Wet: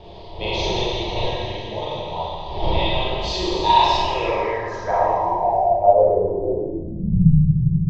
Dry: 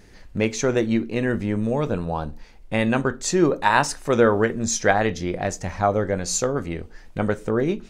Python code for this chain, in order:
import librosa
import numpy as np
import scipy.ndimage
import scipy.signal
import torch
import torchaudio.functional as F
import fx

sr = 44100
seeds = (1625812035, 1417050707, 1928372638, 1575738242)

p1 = fx.dmg_wind(x, sr, seeds[0], corner_hz=340.0, level_db=-23.0)
p2 = fx.peak_eq(p1, sr, hz=910.0, db=11.0, octaves=0.45)
p3 = fx.fixed_phaser(p2, sr, hz=610.0, stages=4)
p4 = p3 + 0.32 * np.pad(p3, (int(3.1 * sr / 1000.0), 0))[:len(p3)]
p5 = fx.echo_wet_highpass(p4, sr, ms=166, feedback_pct=79, hz=1700.0, wet_db=-12)
p6 = fx.filter_sweep_lowpass(p5, sr, from_hz=5000.0, to_hz=160.0, start_s=5.6, end_s=7.07, q=2.9)
p7 = fx.rev_schroeder(p6, sr, rt60_s=1.8, comb_ms=33, drr_db=-8.5)
p8 = fx.quant_dither(p7, sr, seeds[1], bits=6, dither='none')
p9 = p7 + (p8 * librosa.db_to_amplitude(-11.0))
p10 = fx.filter_sweep_lowpass(p9, sr, from_hz=3400.0, to_hz=160.0, start_s=3.98, end_s=7.35, q=5.7)
y = p10 * librosa.db_to_amplitude(-13.5)